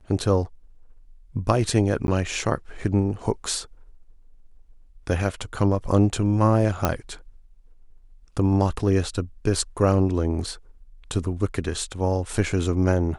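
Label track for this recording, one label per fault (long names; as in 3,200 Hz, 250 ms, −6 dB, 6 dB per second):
2.070000	2.080000	drop-out 11 ms
6.850000	6.850000	click −5 dBFS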